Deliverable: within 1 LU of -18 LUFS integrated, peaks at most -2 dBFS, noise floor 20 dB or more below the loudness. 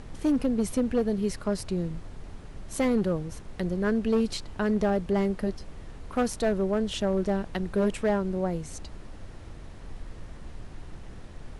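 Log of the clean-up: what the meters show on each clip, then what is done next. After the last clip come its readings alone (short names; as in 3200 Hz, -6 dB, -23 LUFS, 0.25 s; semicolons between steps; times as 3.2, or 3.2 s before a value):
clipped 1.0%; flat tops at -18.5 dBFS; noise floor -44 dBFS; noise floor target -48 dBFS; loudness -28.0 LUFS; peak -18.5 dBFS; loudness target -18.0 LUFS
-> clip repair -18.5 dBFS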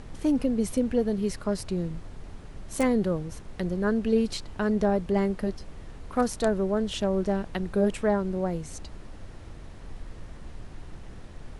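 clipped 0.0%; noise floor -44 dBFS; noise floor target -48 dBFS
-> noise print and reduce 6 dB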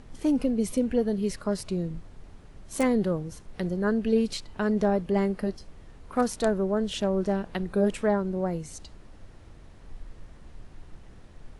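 noise floor -49 dBFS; loudness -27.5 LUFS; peak -10.5 dBFS; loudness target -18.0 LUFS
-> gain +9.5 dB; limiter -2 dBFS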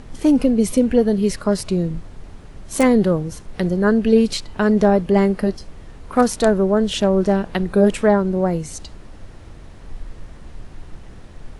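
loudness -18.0 LUFS; peak -2.0 dBFS; noise floor -40 dBFS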